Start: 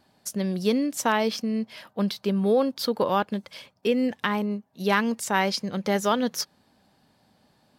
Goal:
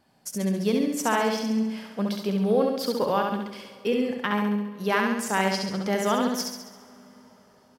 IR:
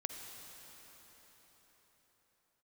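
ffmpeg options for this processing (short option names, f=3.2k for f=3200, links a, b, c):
-filter_complex "[0:a]equalizer=f=3.9k:t=o:w=0.27:g=-6.5,aecho=1:1:68|136|204|272|340|408|476|544:0.668|0.368|0.202|0.111|0.0612|0.0336|0.0185|0.0102,asplit=2[a][b];[1:a]atrim=start_sample=2205[c];[b][c]afir=irnorm=-1:irlink=0,volume=-13.5dB[d];[a][d]amix=inputs=2:normalize=0,volume=-3.5dB"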